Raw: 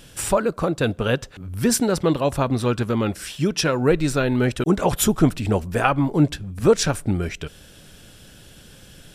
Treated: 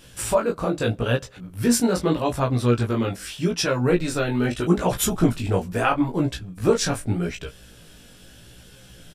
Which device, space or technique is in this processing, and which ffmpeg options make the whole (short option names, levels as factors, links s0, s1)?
double-tracked vocal: -filter_complex "[0:a]asplit=2[s0][s1];[s1]adelay=17,volume=0.631[s2];[s0][s2]amix=inputs=2:normalize=0,flanger=delay=15:depth=6.3:speed=0.8"